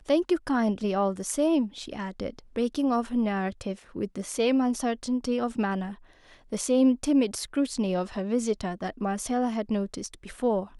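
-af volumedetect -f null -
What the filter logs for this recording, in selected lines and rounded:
mean_volume: -27.3 dB
max_volume: -11.9 dB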